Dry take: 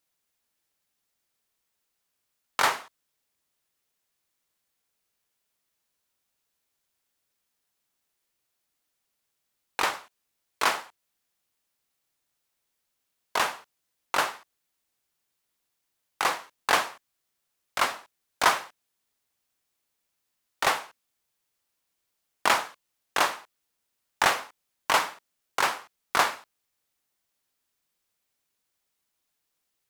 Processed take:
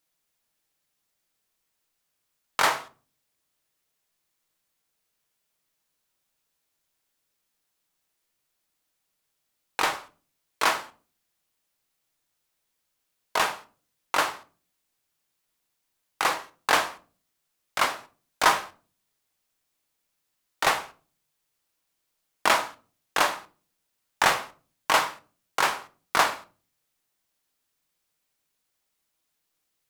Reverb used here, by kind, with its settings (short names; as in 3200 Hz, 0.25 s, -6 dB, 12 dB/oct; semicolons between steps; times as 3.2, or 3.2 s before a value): shoebox room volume 230 m³, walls furnished, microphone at 0.56 m; gain +1 dB